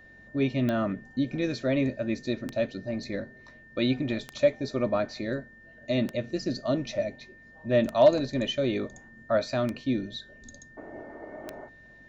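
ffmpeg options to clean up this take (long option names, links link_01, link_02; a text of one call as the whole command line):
ffmpeg -i in.wav -af "adeclick=threshold=4,bandreject=frequency=45.9:width_type=h:width=4,bandreject=frequency=91.8:width_type=h:width=4,bandreject=frequency=137.7:width_type=h:width=4,bandreject=frequency=183.6:width_type=h:width=4,bandreject=frequency=229.5:width_type=h:width=4,bandreject=frequency=1800:width=30" out.wav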